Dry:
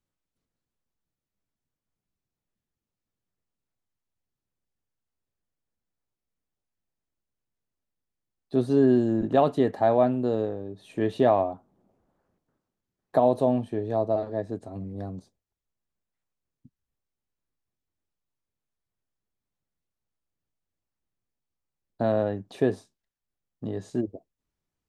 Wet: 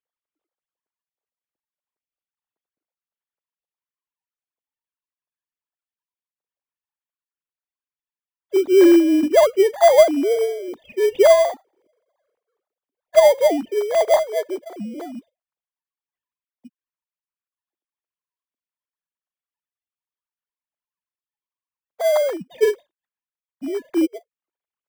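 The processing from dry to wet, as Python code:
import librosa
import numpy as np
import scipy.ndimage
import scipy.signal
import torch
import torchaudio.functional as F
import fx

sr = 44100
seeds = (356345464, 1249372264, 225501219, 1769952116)

p1 = fx.sine_speech(x, sr)
p2 = fx.sample_hold(p1, sr, seeds[0], rate_hz=2700.0, jitter_pct=0)
p3 = p1 + (p2 * 10.0 ** (-6.0 / 20.0))
y = p3 * 10.0 ** (5.0 / 20.0)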